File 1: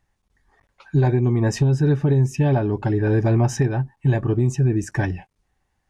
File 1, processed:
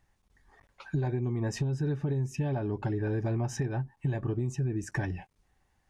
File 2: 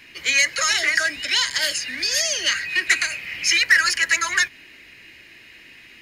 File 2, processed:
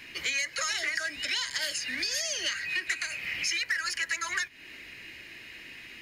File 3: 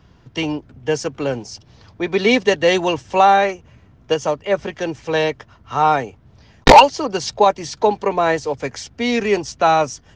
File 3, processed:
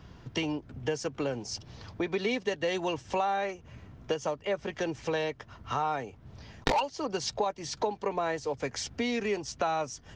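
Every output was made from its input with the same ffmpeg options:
-af "acompressor=threshold=0.0316:ratio=4"

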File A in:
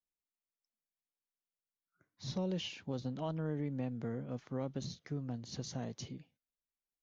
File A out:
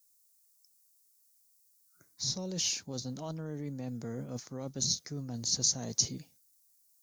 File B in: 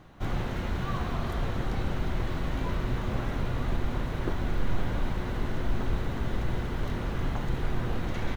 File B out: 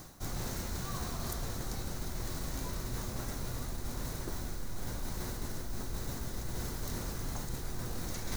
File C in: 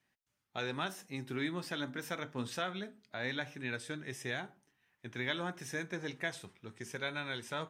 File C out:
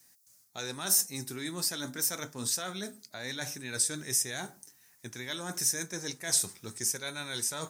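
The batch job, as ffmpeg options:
-af "areverse,acompressor=threshold=0.00794:ratio=6,areverse,aexciter=amount=10.9:drive=3.7:freq=4500,volume=2.11"

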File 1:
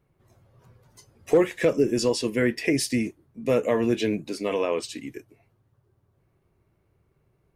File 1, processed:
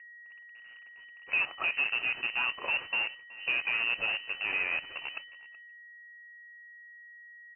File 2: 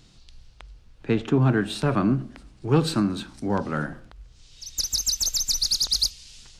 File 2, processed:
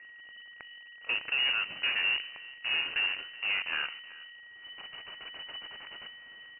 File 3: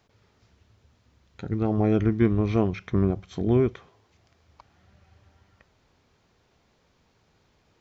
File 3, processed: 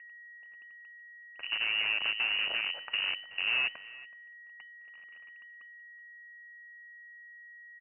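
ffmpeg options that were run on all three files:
-filter_complex "[0:a]lowshelf=f=110:g=-5,asplit=2[s0][s1];[s1]acompressor=threshold=0.0316:ratio=12,volume=1[s2];[s0][s2]amix=inputs=2:normalize=0,alimiter=limit=0.211:level=0:latency=1:release=24,acrusher=bits=5:dc=4:mix=0:aa=0.000001,aeval=exprs='val(0)+0.01*sin(2*PI*1100*n/s)':c=same,asplit=2[s3][s4];[s4]aecho=0:1:374:0.0944[s5];[s3][s5]amix=inputs=2:normalize=0,lowpass=f=2600:t=q:w=0.5098,lowpass=f=2600:t=q:w=0.6013,lowpass=f=2600:t=q:w=0.9,lowpass=f=2600:t=q:w=2.563,afreqshift=-3000,volume=0.398"

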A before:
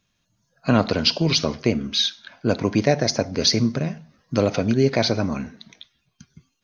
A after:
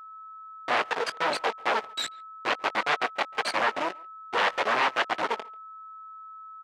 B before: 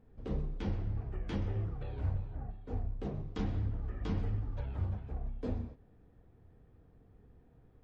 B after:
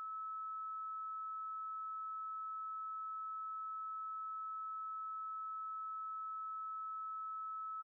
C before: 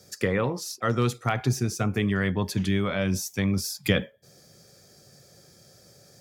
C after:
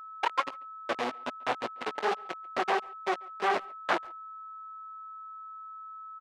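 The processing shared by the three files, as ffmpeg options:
-filter_complex "[0:a]afftfilt=real='re*gte(hypot(re,im),0.501)':imag='im*gte(hypot(re,im),0.501)':win_size=1024:overlap=0.75,afwtdn=0.02,acompressor=mode=upward:threshold=0.01:ratio=2.5,alimiter=limit=0.158:level=0:latency=1:release=18,aeval=exprs='0.158*(cos(1*acos(clip(val(0)/0.158,-1,1)))-cos(1*PI/2))+0.0126*(cos(3*acos(clip(val(0)/0.158,-1,1)))-cos(3*PI/2))+0.0631*(cos(4*acos(clip(val(0)/0.158,-1,1)))-cos(4*PI/2))+0.0708*(cos(8*acos(clip(val(0)/0.158,-1,1)))-cos(8*PI/2))':c=same,asoftclip=type=tanh:threshold=0.141,acrusher=bits=4:mode=log:mix=0:aa=0.000001,flanger=delay=16:depth=7.8:speed=2.3,acrusher=bits=3:mix=0:aa=0.5,aeval=exprs='val(0)+0.00447*sin(2*PI*1300*n/s)':c=same,highpass=680,lowpass=3400,asplit=2[s0][s1];[s1]adelay=140,highpass=300,lowpass=3400,asoftclip=type=hard:threshold=0.0398,volume=0.0631[s2];[s0][s2]amix=inputs=2:normalize=0,volume=1.88"

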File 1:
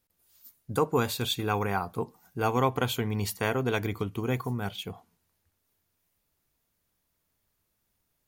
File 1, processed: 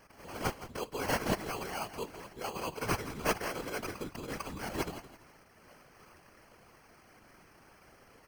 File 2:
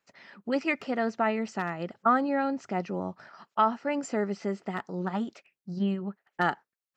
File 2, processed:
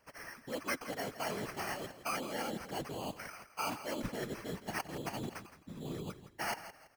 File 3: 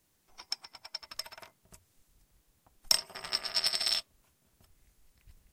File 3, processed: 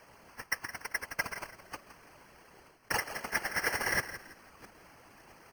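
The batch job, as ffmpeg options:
-filter_complex "[0:a]apsyclip=5.31,areverse,acompressor=threshold=0.0794:ratio=10,areverse,aemphasis=mode=production:type=bsi,acrusher=samples=12:mix=1:aa=0.000001,asoftclip=type=hard:threshold=0.299,afftfilt=real='hypot(re,im)*cos(2*PI*random(0))':imag='hypot(re,im)*sin(2*PI*random(1))':win_size=512:overlap=0.75,asplit=2[s0][s1];[s1]asplit=3[s2][s3][s4];[s2]adelay=166,afreqshift=-30,volume=0.224[s5];[s3]adelay=332,afreqshift=-60,volume=0.0692[s6];[s4]adelay=498,afreqshift=-90,volume=0.0216[s7];[s5][s6][s7]amix=inputs=3:normalize=0[s8];[s0][s8]amix=inputs=2:normalize=0,volume=0.531"

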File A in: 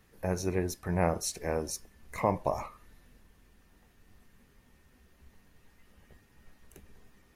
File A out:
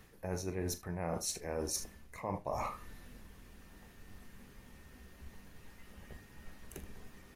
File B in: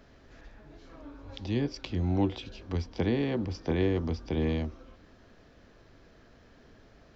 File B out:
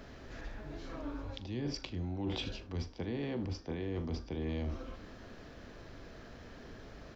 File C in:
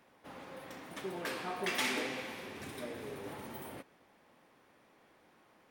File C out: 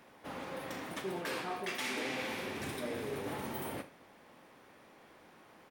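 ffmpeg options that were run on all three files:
-af "aecho=1:1:41|77:0.224|0.141,areverse,acompressor=threshold=0.01:ratio=12,areverse,volume=2"

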